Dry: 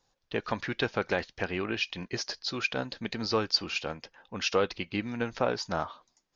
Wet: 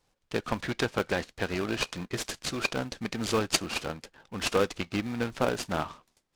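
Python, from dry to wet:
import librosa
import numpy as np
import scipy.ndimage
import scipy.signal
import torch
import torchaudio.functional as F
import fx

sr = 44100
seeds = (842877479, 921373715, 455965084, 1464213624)

p1 = fx.sample_hold(x, sr, seeds[0], rate_hz=1000.0, jitter_pct=0)
p2 = x + F.gain(torch.from_numpy(p1), -9.0).numpy()
y = fx.noise_mod_delay(p2, sr, seeds[1], noise_hz=1600.0, depth_ms=0.041)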